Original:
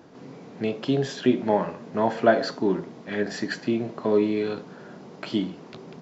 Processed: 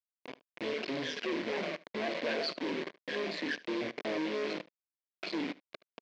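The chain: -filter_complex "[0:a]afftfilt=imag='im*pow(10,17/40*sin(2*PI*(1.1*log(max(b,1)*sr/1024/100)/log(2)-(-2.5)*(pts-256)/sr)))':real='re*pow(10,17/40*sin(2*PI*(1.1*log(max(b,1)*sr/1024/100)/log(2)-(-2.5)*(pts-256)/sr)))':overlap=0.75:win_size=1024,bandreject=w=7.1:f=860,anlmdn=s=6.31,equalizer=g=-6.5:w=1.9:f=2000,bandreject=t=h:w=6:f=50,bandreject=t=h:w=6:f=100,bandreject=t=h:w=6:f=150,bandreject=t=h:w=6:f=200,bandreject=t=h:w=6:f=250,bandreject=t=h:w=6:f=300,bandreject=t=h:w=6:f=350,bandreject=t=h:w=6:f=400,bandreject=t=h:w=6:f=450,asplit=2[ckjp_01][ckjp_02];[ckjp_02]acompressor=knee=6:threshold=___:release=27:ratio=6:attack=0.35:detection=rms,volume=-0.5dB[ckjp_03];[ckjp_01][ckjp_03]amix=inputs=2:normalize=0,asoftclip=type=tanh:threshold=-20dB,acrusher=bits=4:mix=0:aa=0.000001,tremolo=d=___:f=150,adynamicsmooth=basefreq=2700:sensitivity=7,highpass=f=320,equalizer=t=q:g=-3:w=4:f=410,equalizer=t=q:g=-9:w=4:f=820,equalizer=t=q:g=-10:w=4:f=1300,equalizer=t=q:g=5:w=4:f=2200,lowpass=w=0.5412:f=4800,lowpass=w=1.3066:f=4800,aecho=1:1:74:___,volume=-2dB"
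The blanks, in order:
-33dB, 0.571, 0.0891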